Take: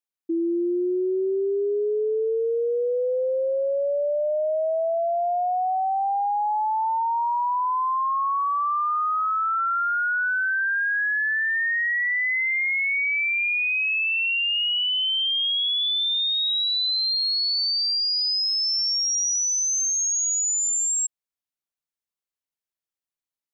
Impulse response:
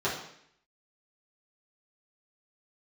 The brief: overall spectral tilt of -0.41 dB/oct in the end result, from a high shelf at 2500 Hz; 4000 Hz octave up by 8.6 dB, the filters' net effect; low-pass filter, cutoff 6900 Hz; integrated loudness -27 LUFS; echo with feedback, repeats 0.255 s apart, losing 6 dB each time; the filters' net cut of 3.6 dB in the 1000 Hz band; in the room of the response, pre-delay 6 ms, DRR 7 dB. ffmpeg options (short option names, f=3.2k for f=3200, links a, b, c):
-filter_complex "[0:a]lowpass=6.9k,equalizer=f=1k:t=o:g=-6.5,highshelf=f=2.5k:g=7.5,equalizer=f=4k:t=o:g=5,aecho=1:1:255|510|765|1020|1275|1530:0.501|0.251|0.125|0.0626|0.0313|0.0157,asplit=2[a][b];[1:a]atrim=start_sample=2205,adelay=6[c];[b][c]afir=irnorm=-1:irlink=0,volume=-17.5dB[d];[a][d]amix=inputs=2:normalize=0,volume=-12.5dB"